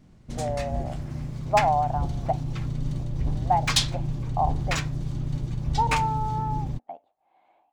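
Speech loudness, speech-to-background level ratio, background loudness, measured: -28.5 LUFS, 1.0 dB, -29.5 LUFS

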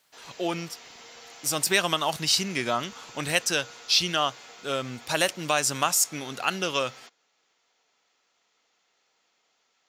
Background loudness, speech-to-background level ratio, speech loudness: -45.5 LUFS, 19.5 dB, -26.0 LUFS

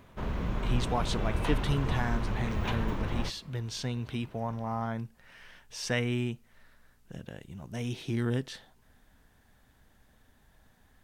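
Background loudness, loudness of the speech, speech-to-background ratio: -34.0 LUFS, -34.5 LUFS, -0.5 dB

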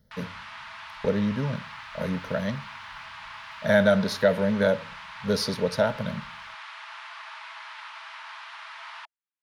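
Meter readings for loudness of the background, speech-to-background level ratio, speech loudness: -40.5 LUFS, 14.5 dB, -26.0 LUFS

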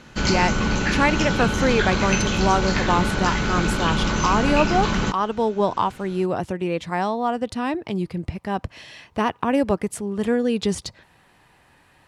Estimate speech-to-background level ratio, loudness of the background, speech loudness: -1.5 dB, -22.5 LUFS, -24.0 LUFS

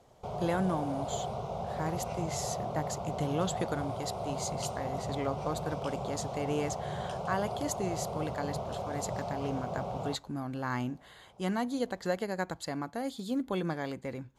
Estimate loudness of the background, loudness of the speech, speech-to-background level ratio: -37.5 LUFS, -36.5 LUFS, 1.0 dB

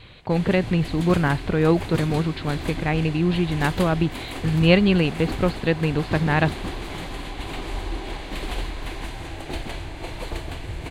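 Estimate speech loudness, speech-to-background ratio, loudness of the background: -22.0 LUFS, 11.0 dB, -33.0 LUFS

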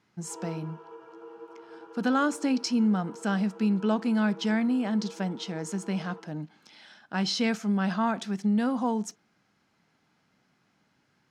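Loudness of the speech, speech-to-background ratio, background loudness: -28.5 LUFS, 17.5 dB, -46.0 LUFS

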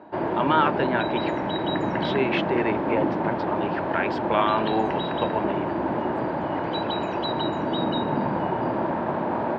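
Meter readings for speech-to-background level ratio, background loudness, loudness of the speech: -0.5 dB, -26.5 LUFS, -27.0 LUFS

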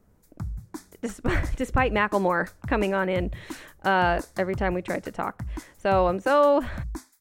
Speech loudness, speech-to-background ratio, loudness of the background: -25.0 LUFS, 13.5 dB, -38.5 LUFS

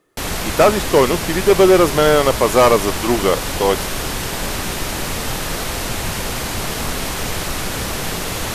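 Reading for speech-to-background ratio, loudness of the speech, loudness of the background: 7.0 dB, -15.5 LUFS, -22.5 LUFS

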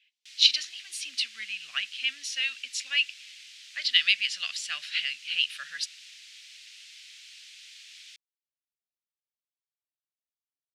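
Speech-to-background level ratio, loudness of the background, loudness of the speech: 19.5 dB, -46.5 LUFS, -27.0 LUFS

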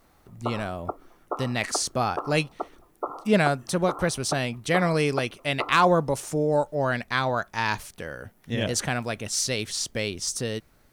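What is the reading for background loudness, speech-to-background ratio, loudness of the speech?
-37.5 LUFS, 11.5 dB, -26.0 LUFS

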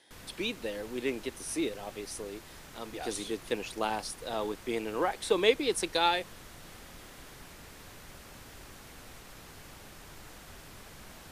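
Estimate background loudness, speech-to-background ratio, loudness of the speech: -49.0 LUFS, 16.5 dB, -32.5 LUFS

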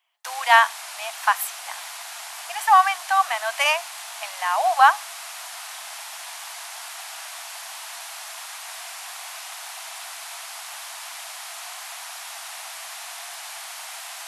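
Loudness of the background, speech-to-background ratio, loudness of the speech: -34.5 LUFS, 14.5 dB, -20.0 LUFS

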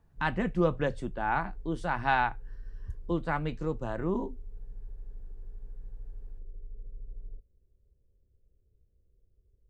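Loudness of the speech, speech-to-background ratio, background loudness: -31.5 LUFS, 17.5 dB, -49.0 LUFS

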